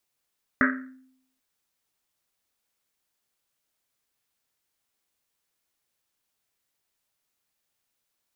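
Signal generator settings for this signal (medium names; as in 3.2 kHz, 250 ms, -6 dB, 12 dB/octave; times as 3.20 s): Risset drum length 0.79 s, pitch 260 Hz, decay 0.74 s, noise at 1.6 kHz, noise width 660 Hz, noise 50%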